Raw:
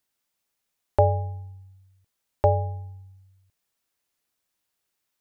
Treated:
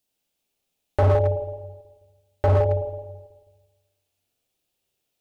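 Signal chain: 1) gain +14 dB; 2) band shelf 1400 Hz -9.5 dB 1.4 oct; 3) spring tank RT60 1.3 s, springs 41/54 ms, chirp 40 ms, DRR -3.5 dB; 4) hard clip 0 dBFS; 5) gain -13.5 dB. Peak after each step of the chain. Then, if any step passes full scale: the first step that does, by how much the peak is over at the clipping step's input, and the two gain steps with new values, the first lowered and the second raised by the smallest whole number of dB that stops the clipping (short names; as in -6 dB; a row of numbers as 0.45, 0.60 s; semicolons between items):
+8.0, +7.5, +7.5, 0.0, -13.5 dBFS; step 1, 7.5 dB; step 1 +6 dB, step 5 -5.5 dB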